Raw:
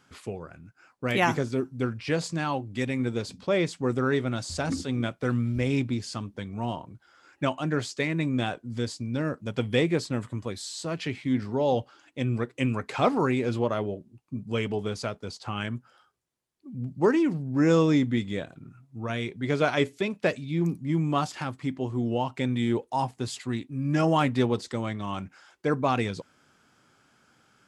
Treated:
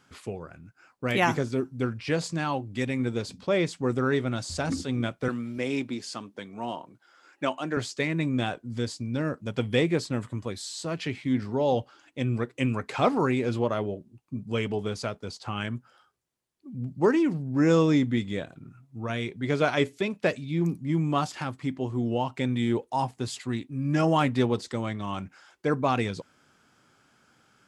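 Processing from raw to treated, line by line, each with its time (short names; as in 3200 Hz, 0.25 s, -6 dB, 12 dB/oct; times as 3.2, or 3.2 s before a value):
5.28–7.77 HPF 260 Hz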